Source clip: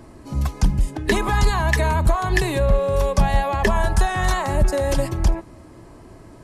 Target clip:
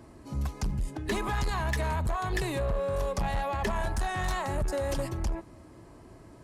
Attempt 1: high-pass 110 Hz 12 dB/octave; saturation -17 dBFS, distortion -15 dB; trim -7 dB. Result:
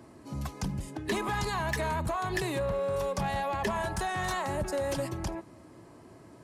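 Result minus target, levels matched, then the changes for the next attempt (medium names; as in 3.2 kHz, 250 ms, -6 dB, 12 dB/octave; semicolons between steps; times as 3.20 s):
125 Hz band -3.0 dB
change: high-pass 32 Hz 12 dB/octave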